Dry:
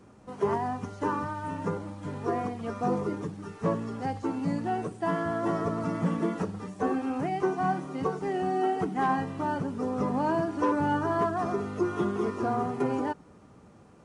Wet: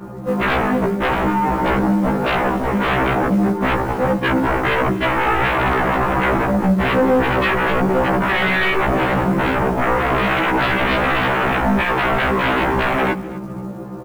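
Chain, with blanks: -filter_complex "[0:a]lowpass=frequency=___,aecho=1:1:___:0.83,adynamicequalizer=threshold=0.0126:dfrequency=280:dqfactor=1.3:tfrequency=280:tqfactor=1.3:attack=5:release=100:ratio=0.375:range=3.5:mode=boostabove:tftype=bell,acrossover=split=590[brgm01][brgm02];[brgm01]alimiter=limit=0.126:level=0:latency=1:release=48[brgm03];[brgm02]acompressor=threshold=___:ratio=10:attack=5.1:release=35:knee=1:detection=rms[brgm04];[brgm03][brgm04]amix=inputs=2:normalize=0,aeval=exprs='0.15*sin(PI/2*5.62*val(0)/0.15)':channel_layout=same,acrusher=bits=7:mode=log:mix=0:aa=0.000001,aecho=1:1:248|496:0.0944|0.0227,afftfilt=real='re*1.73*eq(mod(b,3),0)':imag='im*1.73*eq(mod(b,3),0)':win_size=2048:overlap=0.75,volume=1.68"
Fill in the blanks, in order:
1200, 5.7, 0.00891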